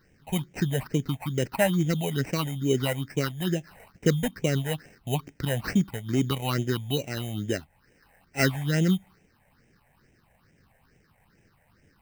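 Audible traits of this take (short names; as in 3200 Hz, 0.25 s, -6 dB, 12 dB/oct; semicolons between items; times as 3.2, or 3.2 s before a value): aliases and images of a low sample rate 3400 Hz, jitter 0%; phasing stages 6, 2.3 Hz, lowest notch 320–1200 Hz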